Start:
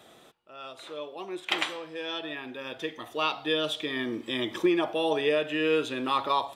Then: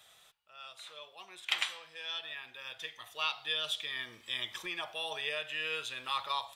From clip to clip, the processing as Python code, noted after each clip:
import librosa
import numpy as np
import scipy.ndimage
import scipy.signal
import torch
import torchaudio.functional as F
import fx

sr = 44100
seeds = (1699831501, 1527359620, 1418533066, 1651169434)

y = fx.tone_stack(x, sr, knobs='10-0-10')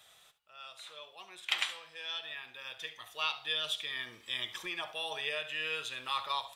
y = x + 10.0 ** (-15.5 / 20.0) * np.pad(x, (int(71 * sr / 1000.0), 0))[:len(x)]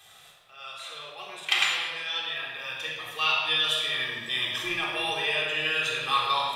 y = fx.room_shoebox(x, sr, seeds[0], volume_m3=2000.0, walls='mixed', distance_m=3.7)
y = y * 10.0 ** (4.0 / 20.0)